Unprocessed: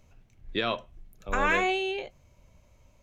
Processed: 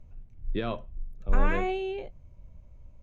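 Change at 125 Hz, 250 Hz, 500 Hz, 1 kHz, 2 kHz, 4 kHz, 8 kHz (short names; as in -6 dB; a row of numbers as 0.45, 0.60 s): +8.0 dB, +1.0 dB, -1.5 dB, -5.0 dB, -8.5 dB, -11.5 dB, under -10 dB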